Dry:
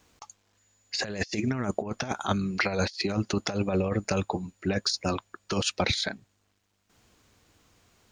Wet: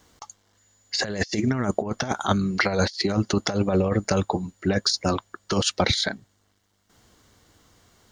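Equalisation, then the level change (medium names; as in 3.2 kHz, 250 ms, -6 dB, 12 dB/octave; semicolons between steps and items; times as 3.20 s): band-stop 2.5 kHz, Q 5.5; +5.0 dB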